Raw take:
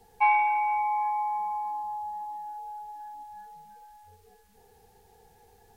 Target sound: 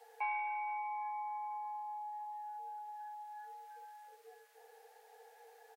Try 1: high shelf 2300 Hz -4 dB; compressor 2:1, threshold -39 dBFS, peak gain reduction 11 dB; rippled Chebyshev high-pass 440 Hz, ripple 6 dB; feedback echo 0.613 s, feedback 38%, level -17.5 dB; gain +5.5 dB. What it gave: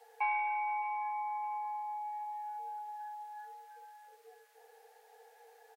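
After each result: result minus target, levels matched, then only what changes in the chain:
echo-to-direct +8.5 dB; compressor: peak gain reduction -4.5 dB
change: feedback echo 0.613 s, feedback 38%, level -26 dB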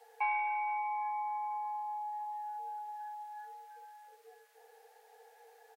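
compressor: peak gain reduction -4.5 dB
change: compressor 2:1, threshold -48 dBFS, peak gain reduction 15.5 dB

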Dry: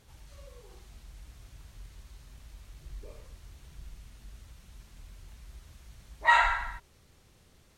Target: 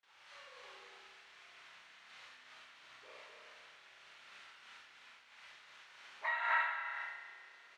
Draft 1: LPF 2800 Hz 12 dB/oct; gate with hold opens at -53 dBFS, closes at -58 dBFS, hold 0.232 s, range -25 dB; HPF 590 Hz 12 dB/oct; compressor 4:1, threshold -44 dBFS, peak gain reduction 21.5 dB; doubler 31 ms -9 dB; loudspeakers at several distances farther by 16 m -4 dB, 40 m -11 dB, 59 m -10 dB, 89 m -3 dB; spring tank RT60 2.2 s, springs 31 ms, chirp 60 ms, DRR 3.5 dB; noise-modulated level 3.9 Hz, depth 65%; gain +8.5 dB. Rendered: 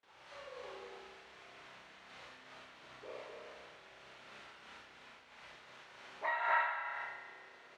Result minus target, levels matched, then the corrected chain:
500 Hz band +11.0 dB
LPF 2800 Hz 12 dB/oct; gate with hold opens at -53 dBFS, closes at -58 dBFS, hold 0.232 s, range -25 dB; HPF 1300 Hz 12 dB/oct; compressor 4:1, threshold -44 dBFS, peak gain reduction 19.5 dB; doubler 31 ms -9 dB; loudspeakers at several distances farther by 16 m -4 dB, 40 m -11 dB, 59 m -10 dB, 89 m -3 dB; spring tank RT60 2.2 s, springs 31 ms, chirp 60 ms, DRR 3.5 dB; noise-modulated level 3.9 Hz, depth 65%; gain +8.5 dB

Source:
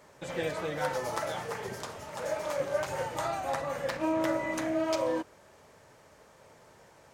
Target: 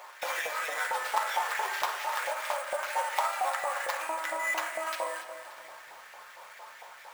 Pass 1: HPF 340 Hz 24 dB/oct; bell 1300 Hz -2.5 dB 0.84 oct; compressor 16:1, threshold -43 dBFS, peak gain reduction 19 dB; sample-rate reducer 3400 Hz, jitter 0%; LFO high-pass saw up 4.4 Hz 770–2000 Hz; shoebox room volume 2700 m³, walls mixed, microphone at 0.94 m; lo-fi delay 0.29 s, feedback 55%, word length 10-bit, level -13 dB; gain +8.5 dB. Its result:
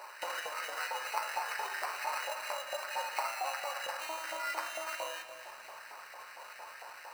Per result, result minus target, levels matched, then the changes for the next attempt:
compressor: peak gain reduction +6 dB; sample-rate reducer: distortion +7 dB
change: compressor 16:1, threshold -36.5 dBFS, peak gain reduction 13 dB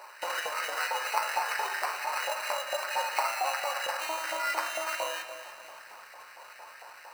sample-rate reducer: distortion +7 dB
change: sample-rate reducer 9000 Hz, jitter 0%

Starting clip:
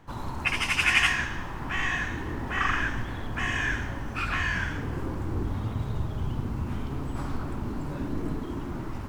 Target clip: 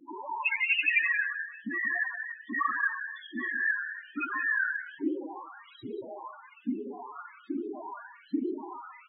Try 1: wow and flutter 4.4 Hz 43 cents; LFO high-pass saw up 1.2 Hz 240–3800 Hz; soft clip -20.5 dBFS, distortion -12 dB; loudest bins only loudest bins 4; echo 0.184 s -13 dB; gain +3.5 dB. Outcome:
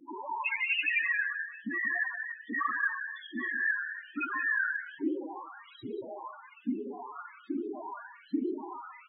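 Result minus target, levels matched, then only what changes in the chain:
soft clip: distortion +11 dB
change: soft clip -11 dBFS, distortion -24 dB

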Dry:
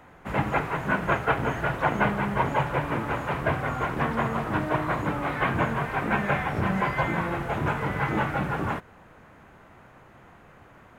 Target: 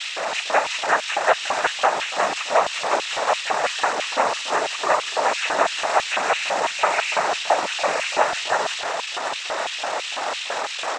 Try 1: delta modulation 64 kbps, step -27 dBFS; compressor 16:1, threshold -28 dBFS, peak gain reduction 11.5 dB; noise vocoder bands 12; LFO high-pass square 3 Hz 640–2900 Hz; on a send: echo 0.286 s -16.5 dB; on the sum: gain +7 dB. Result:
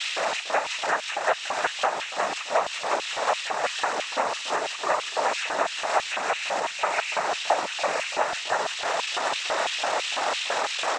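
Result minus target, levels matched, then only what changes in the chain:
compressor: peak gain reduction +6.5 dB
change: compressor 16:1, threshold -21 dBFS, peak gain reduction 5 dB

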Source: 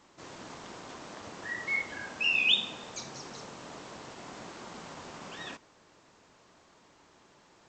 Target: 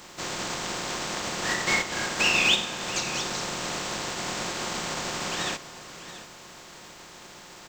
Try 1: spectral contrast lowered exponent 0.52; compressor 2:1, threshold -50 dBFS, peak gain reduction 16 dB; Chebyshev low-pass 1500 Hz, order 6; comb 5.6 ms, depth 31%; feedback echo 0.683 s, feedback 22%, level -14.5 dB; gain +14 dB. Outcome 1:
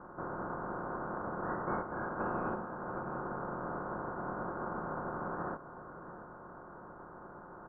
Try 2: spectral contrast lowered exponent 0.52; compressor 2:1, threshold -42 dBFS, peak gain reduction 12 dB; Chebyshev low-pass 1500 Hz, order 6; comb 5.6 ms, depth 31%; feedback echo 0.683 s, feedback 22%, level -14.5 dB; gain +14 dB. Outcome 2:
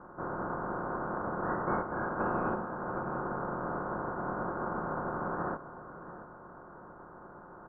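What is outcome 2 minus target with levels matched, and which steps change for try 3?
2000 Hz band -4.5 dB
remove: Chebyshev low-pass 1500 Hz, order 6

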